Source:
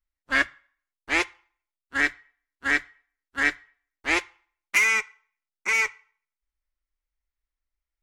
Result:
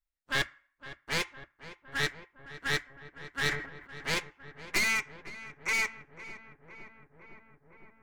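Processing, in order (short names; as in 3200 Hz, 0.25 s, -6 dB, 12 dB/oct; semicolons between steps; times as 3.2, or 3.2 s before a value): one-sided fold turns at -21 dBFS; darkening echo 0.51 s, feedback 81%, low-pass 2100 Hz, level -14 dB; 3.44–4.13 sustainer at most 90 dB/s; gain -5 dB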